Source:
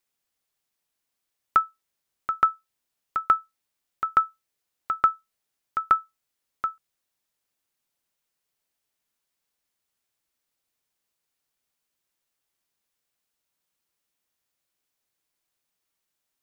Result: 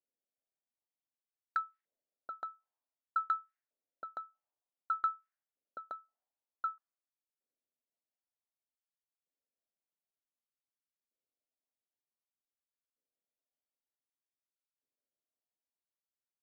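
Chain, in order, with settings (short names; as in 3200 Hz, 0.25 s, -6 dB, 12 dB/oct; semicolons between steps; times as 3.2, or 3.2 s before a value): low-pass opened by the level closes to 390 Hz, open at -23.5 dBFS; fifteen-band EQ 250 Hz +10 dB, 630 Hz +6 dB, 1600 Hz +3 dB; compressor 6:1, threshold -21 dBFS, peak gain reduction 9 dB; soft clip -19.5 dBFS, distortion -10 dB; LFO band-pass saw up 0.54 Hz 480–1900 Hz; gain -3.5 dB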